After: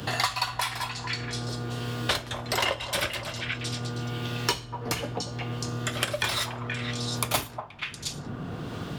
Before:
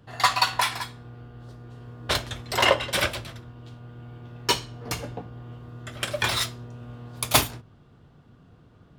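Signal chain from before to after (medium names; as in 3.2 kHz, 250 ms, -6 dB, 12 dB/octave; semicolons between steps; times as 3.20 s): repeats whose band climbs or falls 238 ms, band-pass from 820 Hz, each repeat 1.4 oct, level -9.5 dB; three bands compressed up and down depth 100%; trim -2 dB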